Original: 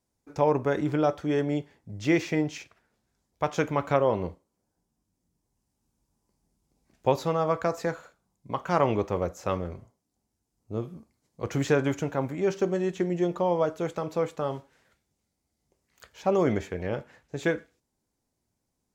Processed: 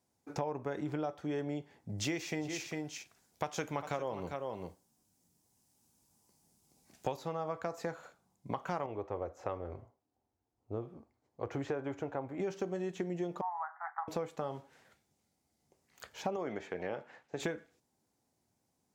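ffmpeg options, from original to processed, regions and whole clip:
-filter_complex "[0:a]asettb=1/sr,asplit=3[s0][s1][s2];[s0]atrim=end=1.984[s3];[s1]atrim=start=1.98:end=7.17,asetpts=PTS-STARTPTS,afade=t=in:d=0.004:c=qsin,afade=t=out:st=5.186:d=0.004:c=qsin,highshelf=f=3400:g=11,aecho=1:1:400:0.266,atrim=end_sample=228879[s4];[s2]atrim=start=7.166[s5];[s3][s4]acrossfade=d=0.004:c1=hsin:c2=qsin[s6];[s6][s5]acrossfade=d=0.004:c1=qsin:c2=hsin,asettb=1/sr,asplit=3[s7][s8][s9];[s7]atrim=end=8.864[s10];[s8]atrim=start=8.86:end=12.4,asetpts=PTS-STARTPTS,afade=t=in:d=0.004:c=qsin,afade=t=out:st=3.536:d=0.004:c=qsin,lowpass=f=1100:p=1,equalizer=f=180:w=2:g=-14[s11];[s9]atrim=start=12.396[s12];[s10][s11]acrossfade=d=0.004:c1=hsin:c2=qsin[s13];[s13][s12]acrossfade=d=0.004:c1=qsin:c2=hsin,asettb=1/sr,asplit=3[s14][s15][s16];[s14]atrim=end=13.414[s17];[s15]atrim=start=13.41:end=14.08,asetpts=PTS-STARTPTS,afade=t=in:d=0.004:c=qsin,afade=t=out:st=0.666:d=0.004:c=qsin,asuperpass=centerf=1200:order=20:qfactor=0.97,asplit=2[s18][s19];[s19]adelay=12,volume=0.299[s20];[s18][s20]amix=inputs=2:normalize=0,atrim=end_sample=29547[s21];[s16]atrim=start=14.076[s22];[s17][s21]acrossfade=d=0.004:c1=hsin:c2=qsin[s23];[s23][s22]acrossfade=d=0.004:c1=qsin:c2=hsin,asettb=1/sr,asplit=3[s24][s25][s26];[s24]atrim=end=16.364[s27];[s25]atrim=start=16.36:end=17.4,asetpts=PTS-STARTPTS,afade=t=in:d=0.004:c=qsin,afade=t=out:st=1.036:d=0.004:c=qsin,highpass=f=440:p=1,aemphasis=mode=reproduction:type=50fm[s28];[s26]atrim=start=17.396[s29];[s27][s28]acrossfade=d=0.004:c1=hsin:c2=qsin[s30];[s30][s29]acrossfade=d=0.004:c1=qsin:c2=hsin,highpass=91,equalizer=f=780:w=4:g=4.5,acompressor=threshold=0.0178:ratio=6,volume=1.12"

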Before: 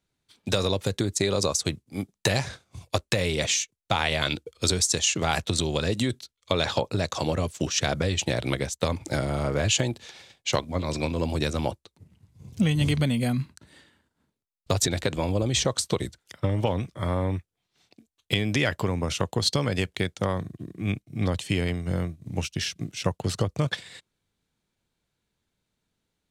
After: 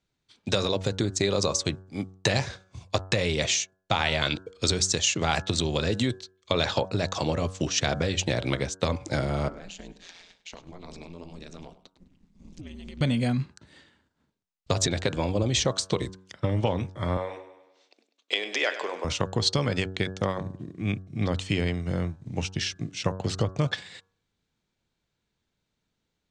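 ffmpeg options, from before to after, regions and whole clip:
-filter_complex "[0:a]asettb=1/sr,asplit=3[s0][s1][s2];[s0]atrim=end=9.484[s3];[s1]atrim=start=9.48:end=13.01,asetpts=PTS-STARTPTS,afade=t=in:d=0.004:c=qsin,afade=t=out:st=3.526:d=0.004:c=qsin,acompressor=threshold=0.0178:ratio=16:attack=3.2:release=140:knee=1:detection=peak,aeval=exprs='val(0)*sin(2*PI*87*n/s)':c=same,aecho=1:1:102|204:0.158|0.0396,atrim=end_sample=155673[s4];[s2]atrim=start=13.006[s5];[s3][s4]acrossfade=d=0.004:c1=hsin:c2=qsin[s6];[s6][s5]acrossfade=d=0.004:c1=qsin:c2=hsin,asettb=1/sr,asplit=3[s7][s8][s9];[s7]atrim=end=17.174[s10];[s8]atrim=start=17.17:end=19.05,asetpts=PTS-STARTPTS,afade=t=in:d=0.004:c=qsin,afade=t=out:st=1.876:d=0.004:c=qsin,highpass=f=410:w=0.5412,highpass=f=410:w=1.3066,equalizer=f=11000:t=o:w=0.39:g=-8,aecho=1:1:99|198|297|396|495|594:0.237|0.128|0.0691|0.0373|0.0202|0.0109,atrim=end_sample=82908[s11];[s9]atrim=start=19.046[s12];[s10][s11]acrossfade=d=0.004:c1=hsin:c2=qsin[s13];[s13][s12]acrossfade=d=0.004:c1=qsin:c2=hsin,lowpass=f=7400:w=0.5412,lowpass=f=7400:w=1.3066,bandreject=f=94.1:t=h:w=4,bandreject=f=188.2:t=h:w=4,bandreject=f=282.3:t=h:w=4,bandreject=f=376.4:t=h:w=4,bandreject=f=470.5:t=h:w=4,bandreject=f=564.6:t=h:w=4,bandreject=f=658.7:t=h:w=4,bandreject=f=752.8:t=h:w=4,bandreject=f=846.9:t=h:w=4,bandreject=f=941:t=h:w=4,bandreject=f=1035.1:t=h:w=4,bandreject=f=1129.2:t=h:w=4,bandreject=f=1223.3:t=h:w=4,bandreject=f=1317.4:t=h:w=4,bandreject=f=1411.5:t=h:w=4,bandreject=f=1505.6:t=h:w=4,bandreject=f=1599.7:t=h:w=4,bandreject=f=1693.8:t=h:w=4"

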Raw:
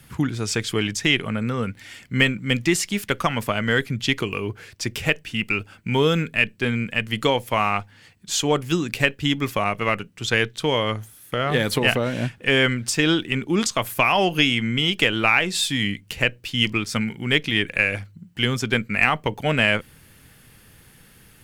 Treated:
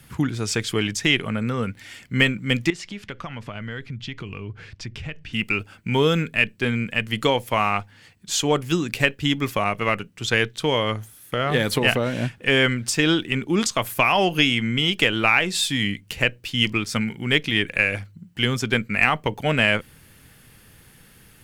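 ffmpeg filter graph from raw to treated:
-filter_complex "[0:a]asettb=1/sr,asplit=3[s0][s1][s2];[s0]atrim=end=2.704[s3];[s1]atrim=start=2.7:end=5.33,asetpts=PTS-STARTPTS,afade=t=in:d=0.004:c=qsin,afade=t=out:st=2.626:d=0.004:c=qsin,lowpass=4500,asubboost=boost=4.5:cutoff=210,acompressor=threshold=0.0224:ratio=3:attack=3.2:release=140:knee=1:detection=peak[s4];[s2]atrim=start=5.326[s5];[s3][s4]acrossfade=d=0.004:c1=hsin:c2=qsin[s6];[s6][s5]acrossfade=d=0.004:c1=qsin:c2=hsin"

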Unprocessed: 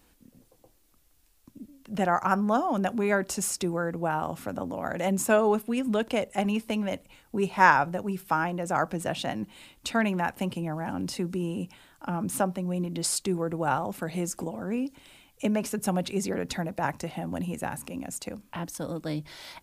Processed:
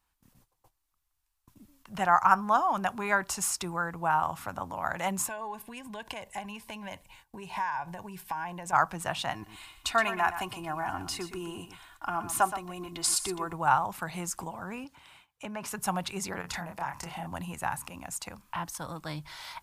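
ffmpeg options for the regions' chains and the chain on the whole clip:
-filter_complex "[0:a]asettb=1/sr,asplit=3[s0][s1][s2];[s0]atrim=end=5.274[s3];[s1]atrim=start=5.27:end=8.73,asetpts=PTS-STARTPTS,afade=t=in:d=0.004:c=qsin,afade=t=out:st=3.456:d=0.004:c=qsin,acompressor=threshold=0.0316:ratio=12:attack=3.2:release=140:knee=1:detection=peak,asuperstop=centerf=1300:order=8:qfactor=4.7[s4];[s2]atrim=start=8.726[s5];[s3][s4]acrossfade=d=0.004:c1=hsin:c2=qsin[s6];[s6][s5]acrossfade=d=0.004:c1=qsin:c2=hsin,asettb=1/sr,asplit=3[s7][s8][s9];[s7]atrim=end=9.344[s10];[s8]atrim=start=9.34:end=13.53,asetpts=PTS-STARTPTS,afade=t=in:d=0.004:c=qsin,afade=t=out:st=4.186:d=0.004:c=qsin,aecho=1:1:2.8:0.6,atrim=end_sample=184779,aecho=1:1:121:0.282,atrim=end_sample=184779[s11];[s9]atrim=start=13.526[s12];[s10][s11]acrossfade=d=0.004:c1=hsin:c2=qsin[s13];[s13][s12]acrossfade=d=0.004:c1=qsin:c2=hsin,asettb=1/sr,asplit=3[s14][s15][s16];[s14]atrim=end=14.844[s17];[s15]atrim=start=14.84:end=15.68,asetpts=PTS-STARTPTS,afade=t=in:d=0.004:c=qsin,afade=t=out:st=0.836:d=0.004:c=qsin,highpass=71,highshelf=f=5100:g=-8.5,acompressor=threshold=0.0447:ratio=4:attack=3.2:release=140:knee=1:detection=peak[s18];[s16]atrim=start=15.676[s19];[s17][s18]acrossfade=d=0.004:c1=hsin:c2=qsin[s20];[s20][s19]acrossfade=d=0.004:c1=qsin:c2=hsin,asettb=1/sr,asplit=3[s21][s22][s23];[s21]atrim=end=16.414[s24];[s22]atrim=start=16.41:end=17.27,asetpts=PTS-STARTPTS,afade=t=in:d=0.004:c=qsin,afade=t=out:st=0.856:d=0.004:c=qsin,bandreject=f=3900:w=14,acompressor=threshold=0.0282:ratio=12:attack=3.2:release=140:knee=1:detection=peak,asplit=2[s25][s26];[s26]adelay=29,volume=0.668[s27];[s25][s27]amix=inputs=2:normalize=0,atrim=end_sample=37926[s28];[s23]atrim=start=17.266[s29];[s24][s28]acrossfade=d=0.004:c1=hsin:c2=qsin[s30];[s30][s29]acrossfade=d=0.004:c1=qsin:c2=hsin,agate=range=0.178:threshold=0.00158:ratio=16:detection=peak,equalizer=f=250:t=o:w=1:g=-11,equalizer=f=500:t=o:w=1:g=-10,equalizer=f=1000:t=o:w=1:g=9"

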